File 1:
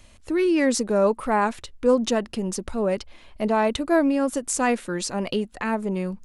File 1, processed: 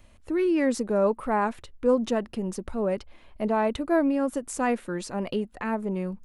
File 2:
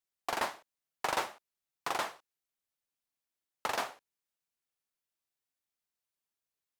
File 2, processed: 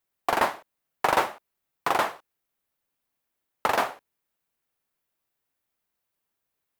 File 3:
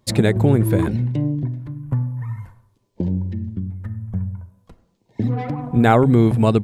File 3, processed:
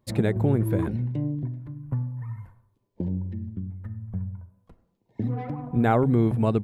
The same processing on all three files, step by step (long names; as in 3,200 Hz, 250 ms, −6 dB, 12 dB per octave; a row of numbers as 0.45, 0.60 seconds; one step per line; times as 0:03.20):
parametric band 6,000 Hz −8.5 dB 2.2 octaves
loudness normalisation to −27 LKFS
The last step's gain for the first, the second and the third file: −3.0, +11.5, −7.0 decibels